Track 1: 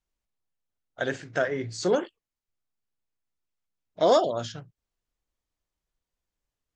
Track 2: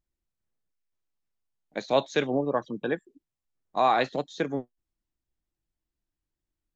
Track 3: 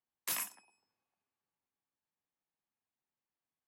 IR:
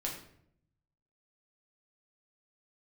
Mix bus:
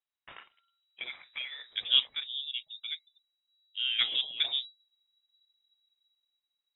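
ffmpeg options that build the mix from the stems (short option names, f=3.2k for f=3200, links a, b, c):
-filter_complex "[0:a]highpass=f=990:p=1,acompressor=threshold=-27dB:ratio=6,asoftclip=type=tanh:threshold=-20dB,volume=-5dB,asplit=2[a][b];[1:a]dynaudnorm=f=110:g=13:m=13dB,lowpass=1.9k,volume=-9dB[c];[2:a]crystalizer=i=2.5:c=0,volume=-8.5dB[d];[b]apad=whole_len=297977[e];[c][e]sidechaingate=range=-9dB:threshold=-57dB:ratio=16:detection=peak[f];[a][f][d]amix=inputs=3:normalize=0,asubboost=boost=8:cutoff=64,lowpass=f=3.3k:t=q:w=0.5098,lowpass=f=3.3k:t=q:w=0.6013,lowpass=f=3.3k:t=q:w=0.9,lowpass=f=3.3k:t=q:w=2.563,afreqshift=-3900"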